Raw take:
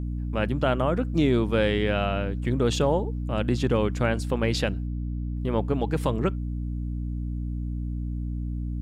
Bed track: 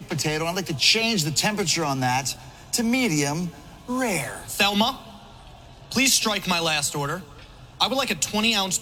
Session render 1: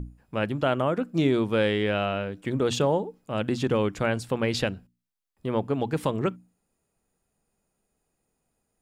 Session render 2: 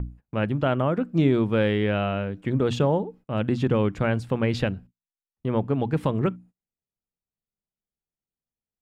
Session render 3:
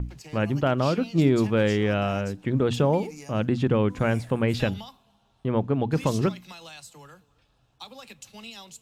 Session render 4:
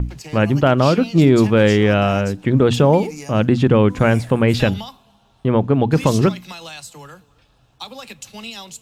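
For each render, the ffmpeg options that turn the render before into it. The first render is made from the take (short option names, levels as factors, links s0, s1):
-af "bandreject=f=60:t=h:w=6,bandreject=f=120:t=h:w=6,bandreject=f=180:t=h:w=6,bandreject=f=240:t=h:w=6,bandreject=f=300:t=h:w=6"
-af "agate=range=0.0631:threshold=0.00355:ratio=16:detection=peak,bass=f=250:g=6,treble=f=4000:g=-10"
-filter_complex "[1:a]volume=0.0891[s0];[0:a][s0]amix=inputs=2:normalize=0"
-af "volume=2.82,alimiter=limit=0.708:level=0:latency=1"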